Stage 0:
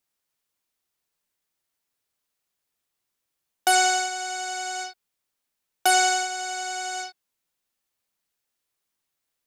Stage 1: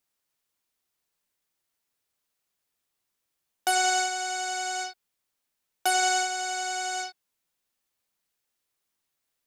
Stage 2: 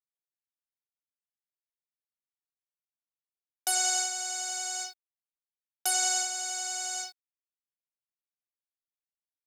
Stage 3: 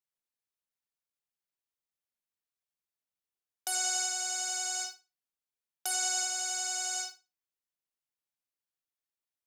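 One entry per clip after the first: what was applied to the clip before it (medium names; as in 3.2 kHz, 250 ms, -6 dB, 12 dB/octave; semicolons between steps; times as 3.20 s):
peak limiter -14.5 dBFS, peak gain reduction 6.5 dB
bit crusher 11-bit; tone controls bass -14 dB, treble +13 dB; trim -9 dB
flutter echo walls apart 9.6 m, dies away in 0.26 s; peak limiter -20.5 dBFS, peak gain reduction 7 dB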